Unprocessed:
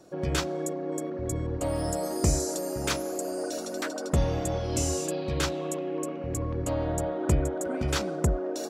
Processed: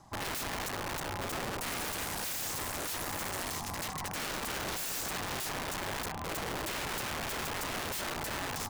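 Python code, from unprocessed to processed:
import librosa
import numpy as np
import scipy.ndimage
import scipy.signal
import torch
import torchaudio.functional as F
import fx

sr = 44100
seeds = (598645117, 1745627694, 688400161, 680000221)

y = (np.mod(10.0 ** (28.5 / 20.0) * x + 1.0, 2.0) - 1.0) / 10.0 ** (28.5 / 20.0)
y = y * np.sin(2.0 * np.pi * 470.0 * np.arange(len(y)) / sr)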